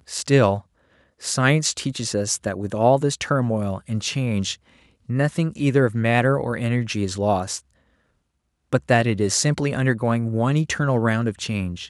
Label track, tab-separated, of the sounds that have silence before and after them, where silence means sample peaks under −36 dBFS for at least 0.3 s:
1.220000	4.550000	sound
5.090000	7.590000	sound